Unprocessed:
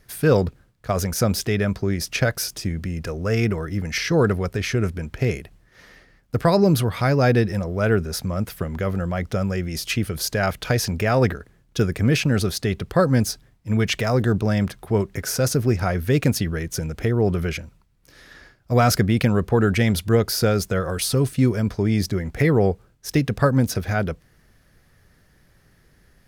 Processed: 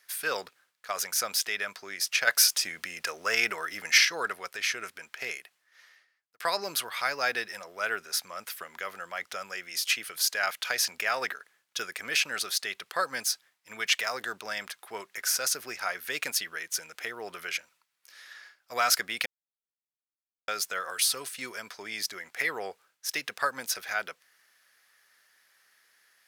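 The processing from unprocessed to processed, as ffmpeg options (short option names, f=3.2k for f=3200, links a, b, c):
-filter_complex "[0:a]asettb=1/sr,asplit=3[a][b][c];[a]atrim=end=2.274[d];[b]atrim=start=2.27:end=4.05,asetpts=PTS-STARTPTS,afade=t=in:d=0.004:c=qsin,afade=t=out:st=1.776:d=0.004:c=qsin,acontrast=67[e];[c]atrim=start=4.046[f];[d][e]acrossfade=d=0.004:c1=hsin:c2=qsin[g];[g][f]acrossfade=d=0.004:c1=qsin:c2=hsin,asplit=4[h][i][j][k];[h]atrim=end=6.4,asetpts=PTS-STARTPTS,afade=t=out:st=5.22:d=1.18[l];[i]atrim=start=6.4:end=19.26,asetpts=PTS-STARTPTS,afade=t=in:d=0.004:c=hsin,afade=t=out:st=12.856:d=0.004:c=hsin[m];[j]atrim=start=19.26:end=20.48,asetpts=PTS-STARTPTS,volume=0[n];[k]atrim=start=20.48,asetpts=PTS-STARTPTS,afade=t=in:d=0.004:c=hsin[o];[l][m][n][o]concat=n=4:v=0:a=1,highpass=1.3k"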